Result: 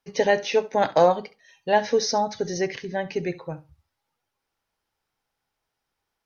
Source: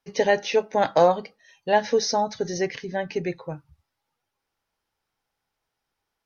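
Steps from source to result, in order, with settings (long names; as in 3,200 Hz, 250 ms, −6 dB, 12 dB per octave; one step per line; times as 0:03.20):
flutter between parallel walls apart 11.7 metres, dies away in 0.24 s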